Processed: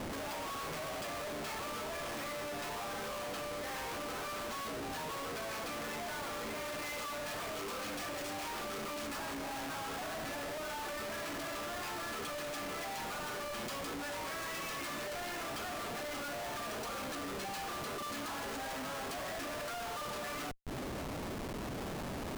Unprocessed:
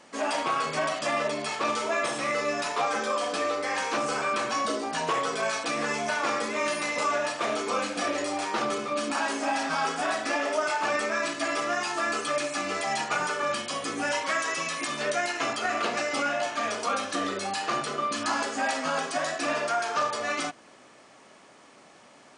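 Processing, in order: 6.86–9.18 high shelf 2100 Hz +6 dB; compressor 6:1, threshold -43 dBFS, peak gain reduction 19.5 dB; Schmitt trigger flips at -50 dBFS; gain +4.5 dB

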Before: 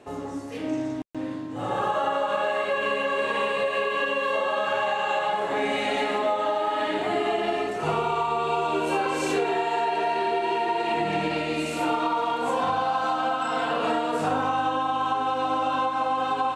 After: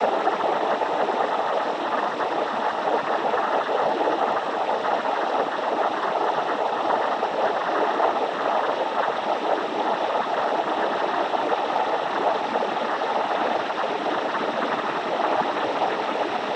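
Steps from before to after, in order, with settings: Paulstretch 44×, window 1.00 s, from 6.4; noise vocoder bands 12; gain +2 dB

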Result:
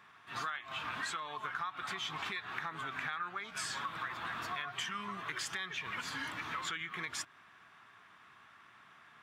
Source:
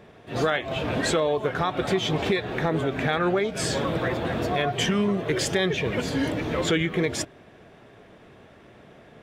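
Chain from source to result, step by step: HPF 83 Hz; resonant low shelf 780 Hz -13.5 dB, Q 3; compressor 6:1, threshold -30 dBFS, peak gain reduction 12 dB; gain -6 dB

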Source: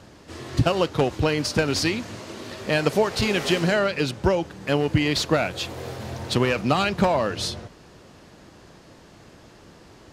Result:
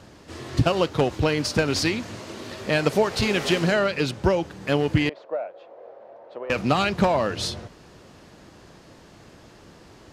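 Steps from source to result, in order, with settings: 0.88–1.67 requantised 12-bit, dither none; 5.09–6.5 ladder band-pass 640 Hz, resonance 60%; Doppler distortion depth 0.14 ms

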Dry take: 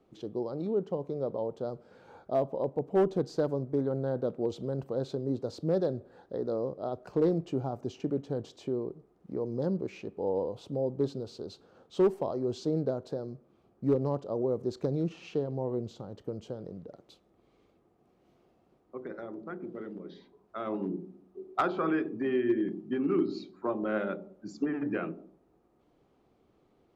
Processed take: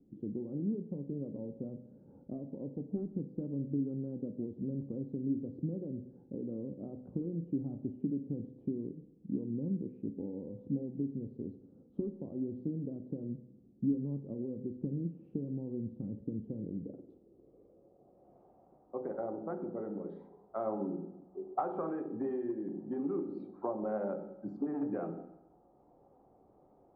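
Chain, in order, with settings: compressor 6:1, threshold -35 dBFS, peak gain reduction 13.5 dB; low-pass sweep 250 Hz -> 800 Hz, 16.47–18.5; on a send: reverb RT60 0.95 s, pre-delay 3 ms, DRR 8 dB

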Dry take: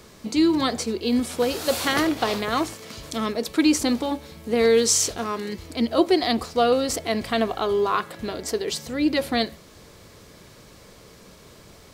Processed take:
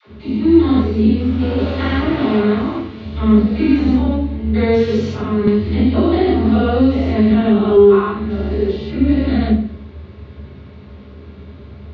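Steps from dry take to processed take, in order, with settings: stepped spectrum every 0.2 s; inverse Chebyshev low-pass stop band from 8800 Hz, stop band 60 dB; dispersion lows, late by 74 ms, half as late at 420 Hz; reverb RT60 0.45 s, pre-delay 3 ms, DRR -12 dB; 5.47–7.77 three-band squash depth 100%; gain -9 dB

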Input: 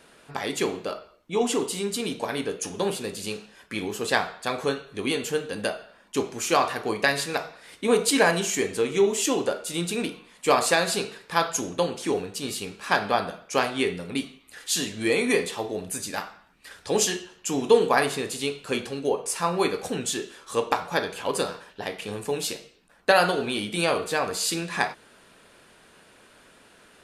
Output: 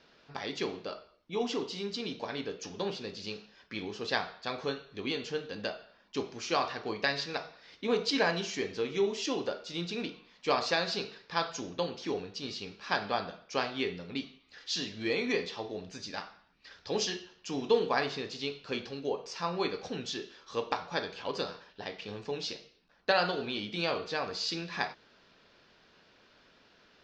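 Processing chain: steep low-pass 5500 Hz 48 dB/oct; tone controls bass +1 dB, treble +8 dB; gain -8.5 dB

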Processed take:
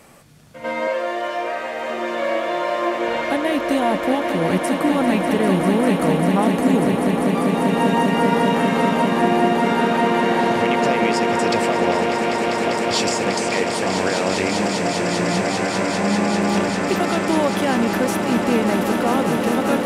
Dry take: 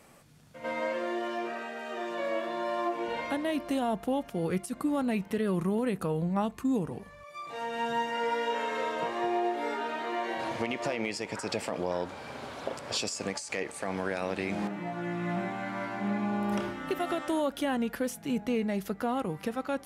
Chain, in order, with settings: 0.87–1.9 resonant low shelf 360 Hz -11 dB, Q 1.5; swelling echo 0.198 s, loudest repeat 8, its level -9 dB; gain +9 dB

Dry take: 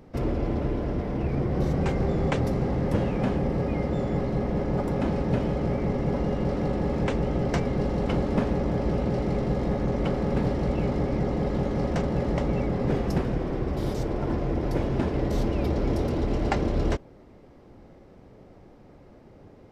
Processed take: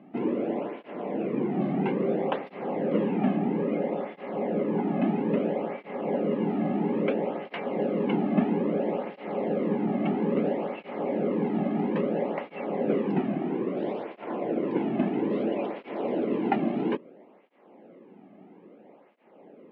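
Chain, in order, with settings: elliptic band-pass 190–2800 Hz, stop band 40 dB; bell 1400 Hz -5 dB 0.76 oct; tape flanging out of phase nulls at 0.6 Hz, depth 2.2 ms; gain +4 dB

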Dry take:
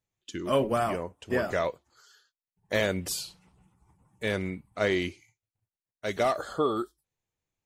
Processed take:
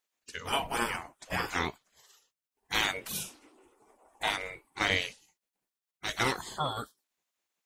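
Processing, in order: spectral gate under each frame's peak -15 dB weak; 3.11–4.29 bell 190 Hz -> 880 Hz +13.5 dB 0.92 oct; gain +6.5 dB

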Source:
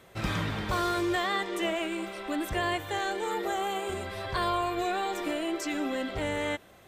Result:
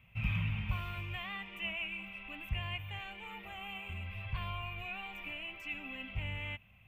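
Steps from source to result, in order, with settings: EQ curve 110 Hz 0 dB, 230 Hz -10 dB, 340 Hz -30 dB, 980 Hz -15 dB, 1700 Hz -19 dB, 2600 Hz +4 dB, 4000 Hz -26 dB, 7300 Hz -29 dB, 10000 Hz -26 dB, 15000 Hz -11 dB; gain +1 dB

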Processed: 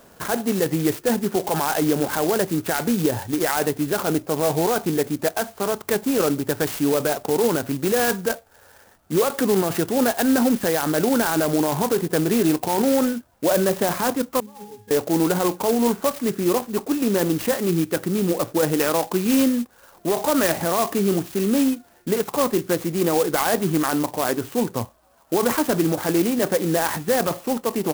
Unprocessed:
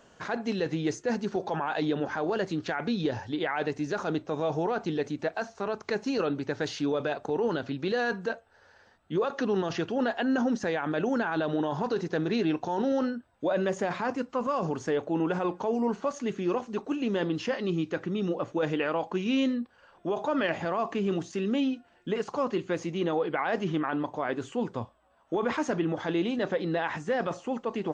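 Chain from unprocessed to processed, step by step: 14.4–14.91 octave resonator G#, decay 0.45 s; clock jitter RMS 0.082 ms; gain +8 dB

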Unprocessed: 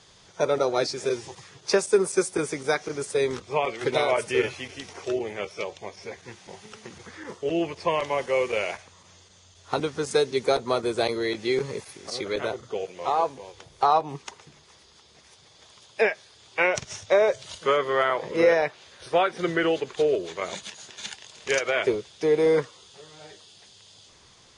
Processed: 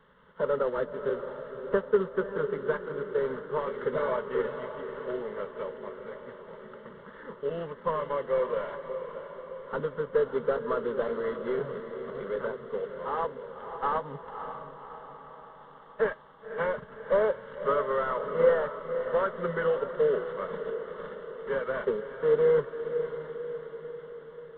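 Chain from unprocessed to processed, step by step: CVSD 16 kbps; fixed phaser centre 490 Hz, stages 8; diffused feedback echo 0.564 s, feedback 57%, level -9 dB; gain -1 dB

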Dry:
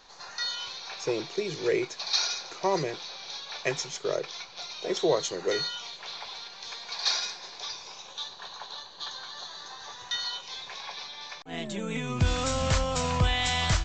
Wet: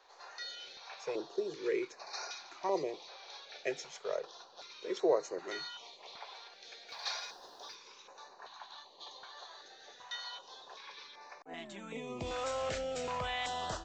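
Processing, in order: bell 1400 Hz -6 dB 2.3 oct; 6.88–7.74 added noise pink -57 dBFS; three-band isolator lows -23 dB, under 320 Hz, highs -13 dB, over 2400 Hz; stepped notch 2.6 Hz 220–3300 Hz

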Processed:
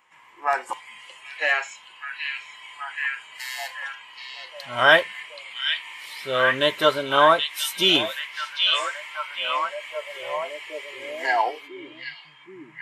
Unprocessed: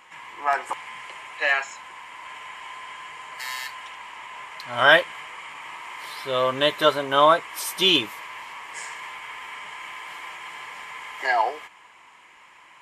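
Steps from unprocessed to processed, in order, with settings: delay with a stepping band-pass 0.777 s, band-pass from 3200 Hz, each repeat -0.7 oct, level -1.5 dB; spectral noise reduction 11 dB

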